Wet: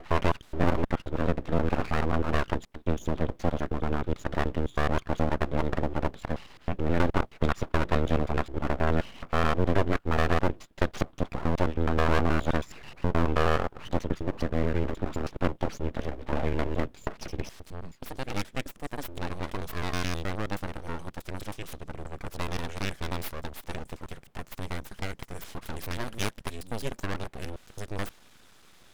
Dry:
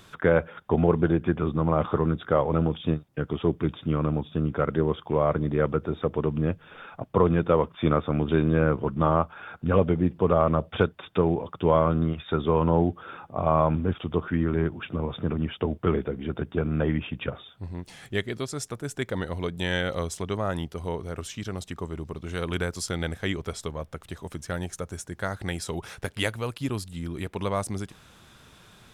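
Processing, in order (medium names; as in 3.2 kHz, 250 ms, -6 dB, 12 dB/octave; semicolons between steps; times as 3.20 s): slices played last to first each 106 ms, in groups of 5; valve stage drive 14 dB, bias 0.65; full-wave rectifier; trim +2 dB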